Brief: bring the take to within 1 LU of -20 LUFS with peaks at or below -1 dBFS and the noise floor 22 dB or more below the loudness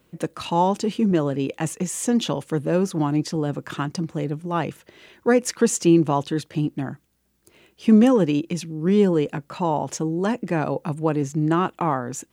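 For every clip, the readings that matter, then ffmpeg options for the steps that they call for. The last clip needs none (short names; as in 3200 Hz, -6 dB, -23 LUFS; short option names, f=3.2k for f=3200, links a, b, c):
loudness -22.5 LUFS; peak -5.5 dBFS; loudness target -20.0 LUFS
-> -af "volume=2.5dB"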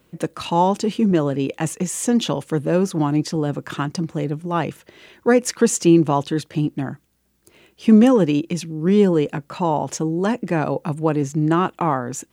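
loudness -20.0 LUFS; peak -3.0 dBFS; noise floor -63 dBFS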